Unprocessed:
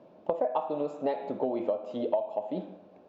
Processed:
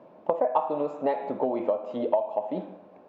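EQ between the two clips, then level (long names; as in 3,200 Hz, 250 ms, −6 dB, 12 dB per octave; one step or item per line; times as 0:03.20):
octave-band graphic EQ 125/250/500/1,000/2,000 Hz +4/+4/+4/+9/+7 dB
−3.5 dB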